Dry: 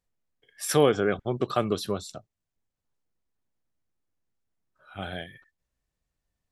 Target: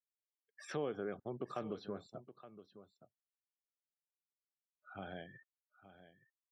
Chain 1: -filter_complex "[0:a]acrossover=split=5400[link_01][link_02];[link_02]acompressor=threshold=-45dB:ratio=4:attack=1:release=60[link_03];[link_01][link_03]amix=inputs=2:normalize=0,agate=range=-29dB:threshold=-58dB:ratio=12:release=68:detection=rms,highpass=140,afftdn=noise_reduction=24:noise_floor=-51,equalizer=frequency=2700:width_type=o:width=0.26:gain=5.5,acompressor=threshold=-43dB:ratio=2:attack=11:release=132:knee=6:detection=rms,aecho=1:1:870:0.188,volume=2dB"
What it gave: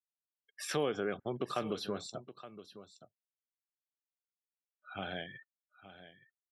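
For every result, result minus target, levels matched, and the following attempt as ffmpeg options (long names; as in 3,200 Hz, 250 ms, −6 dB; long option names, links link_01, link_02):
4,000 Hz band +7.5 dB; downward compressor: peak gain reduction −5 dB
-filter_complex "[0:a]acrossover=split=5400[link_01][link_02];[link_02]acompressor=threshold=-45dB:ratio=4:attack=1:release=60[link_03];[link_01][link_03]amix=inputs=2:normalize=0,agate=range=-29dB:threshold=-58dB:ratio=12:release=68:detection=rms,highpass=140,highshelf=frequency=2100:gain=-12,afftdn=noise_reduction=24:noise_floor=-51,equalizer=frequency=2700:width_type=o:width=0.26:gain=5.5,acompressor=threshold=-43dB:ratio=2:attack=11:release=132:knee=6:detection=rms,aecho=1:1:870:0.188,volume=2dB"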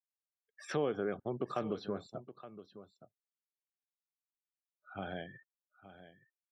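downward compressor: peak gain reduction −5.5 dB
-filter_complex "[0:a]acrossover=split=5400[link_01][link_02];[link_02]acompressor=threshold=-45dB:ratio=4:attack=1:release=60[link_03];[link_01][link_03]amix=inputs=2:normalize=0,agate=range=-29dB:threshold=-58dB:ratio=12:release=68:detection=rms,highpass=140,highshelf=frequency=2100:gain=-12,afftdn=noise_reduction=24:noise_floor=-51,equalizer=frequency=2700:width_type=o:width=0.26:gain=5.5,acompressor=threshold=-54dB:ratio=2:attack=11:release=132:knee=6:detection=rms,aecho=1:1:870:0.188,volume=2dB"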